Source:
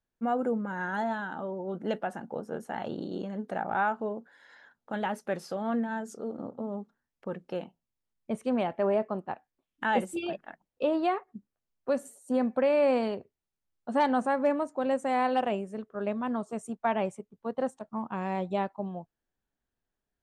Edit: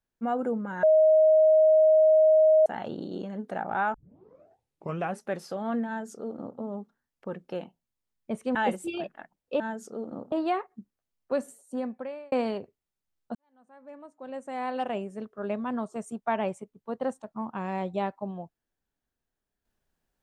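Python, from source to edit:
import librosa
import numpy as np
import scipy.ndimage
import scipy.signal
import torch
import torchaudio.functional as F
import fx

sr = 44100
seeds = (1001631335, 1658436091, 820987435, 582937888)

y = fx.edit(x, sr, fx.bleep(start_s=0.83, length_s=1.83, hz=627.0, db=-15.5),
    fx.tape_start(start_s=3.94, length_s=1.29),
    fx.duplicate(start_s=5.87, length_s=0.72, to_s=10.89),
    fx.cut(start_s=8.55, length_s=1.29),
    fx.fade_out_span(start_s=11.96, length_s=0.93),
    fx.fade_in_span(start_s=13.92, length_s=1.79, curve='qua'), tone=tone)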